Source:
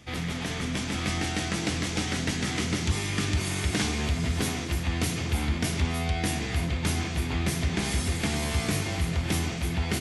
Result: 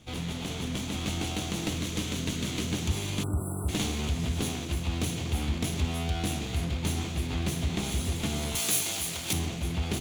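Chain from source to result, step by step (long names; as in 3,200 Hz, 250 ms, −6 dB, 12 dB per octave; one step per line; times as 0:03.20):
lower of the sound and its delayed copy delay 0.3 ms
0:01.77–0:02.68: parametric band 790 Hz −10.5 dB 0.21 octaves
0:03.23–0:03.69: time-frequency box erased 1,500–7,600 Hz
0:08.55–0:09.33: RIAA equalisation recording
level −2 dB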